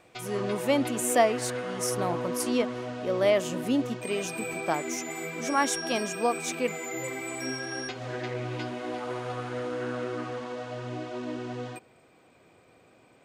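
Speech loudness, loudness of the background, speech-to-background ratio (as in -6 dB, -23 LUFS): -29.5 LUFS, -34.5 LUFS, 5.0 dB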